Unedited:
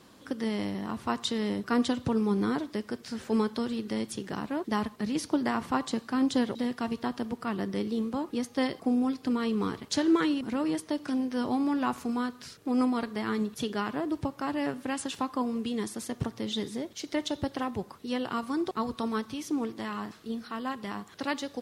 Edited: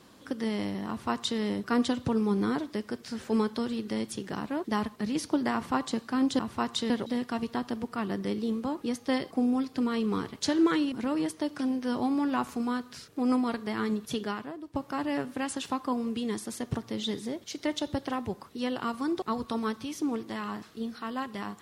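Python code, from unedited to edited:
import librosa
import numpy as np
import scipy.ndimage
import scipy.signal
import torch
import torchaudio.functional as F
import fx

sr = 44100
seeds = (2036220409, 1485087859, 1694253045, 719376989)

y = fx.edit(x, sr, fx.duplicate(start_s=0.88, length_s=0.51, to_s=6.39),
    fx.fade_out_to(start_s=13.72, length_s=0.52, curve='qua', floor_db=-13.0), tone=tone)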